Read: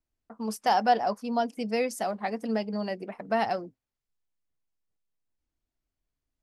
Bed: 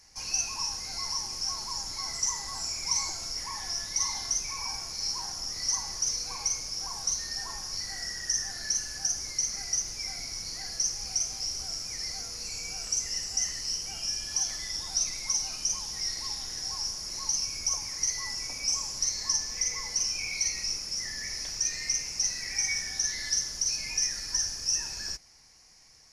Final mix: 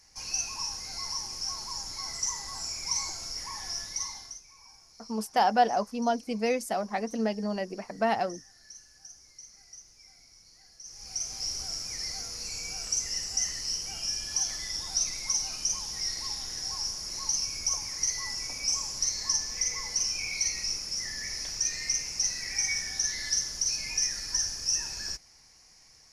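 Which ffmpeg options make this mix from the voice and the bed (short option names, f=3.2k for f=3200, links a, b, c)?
-filter_complex "[0:a]adelay=4700,volume=0dB[a];[1:a]volume=17.5dB,afade=t=out:st=3.78:d=0.63:silence=0.133352,afade=t=in:st=10.83:d=0.65:silence=0.105925[b];[a][b]amix=inputs=2:normalize=0"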